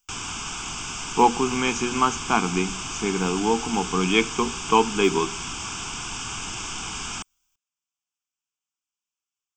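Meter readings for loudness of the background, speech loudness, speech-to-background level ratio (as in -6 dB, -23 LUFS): -30.5 LUFS, -23.5 LUFS, 7.0 dB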